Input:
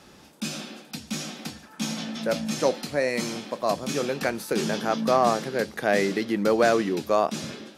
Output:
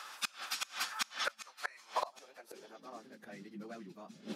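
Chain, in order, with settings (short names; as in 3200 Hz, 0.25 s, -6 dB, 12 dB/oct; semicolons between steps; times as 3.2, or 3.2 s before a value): dynamic EQ 510 Hz, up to -6 dB, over -34 dBFS, Q 1.2; high-pass sweep 1200 Hz -> 190 Hz, 3.11–5.91; plain phase-vocoder stretch 0.56×; flipped gate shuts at -26 dBFS, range -29 dB; gain +6 dB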